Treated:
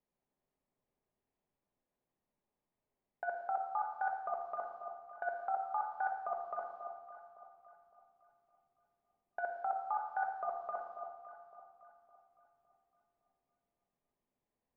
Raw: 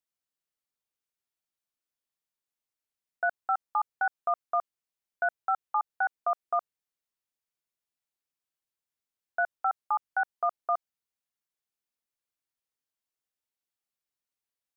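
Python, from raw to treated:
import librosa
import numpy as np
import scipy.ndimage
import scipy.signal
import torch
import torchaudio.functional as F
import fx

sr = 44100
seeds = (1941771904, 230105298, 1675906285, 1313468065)

y = fx.env_lowpass(x, sr, base_hz=1200.0, full_db=-29.0)
y = fx.peak_eq(y, sr, hz=1400.0, db=-9.5, octaves=0.59)
y = fx.over_compress(y, sr, threshold_db=-38.0, ratio=-1.0)
y = fx.air_absorb(y, sr, metres=170.0)
y = fx.echo_alternate(y, sr, ms=280, hz=1000.0, feedback_pct=60, wet_db=-8.5)
y = fx.room_shoebox(y, sr, seeds[0], volume_m3=960.0, walls='mixed', distance_m=1.3)
y = y * 10.0 ** (2.0 / 20.0)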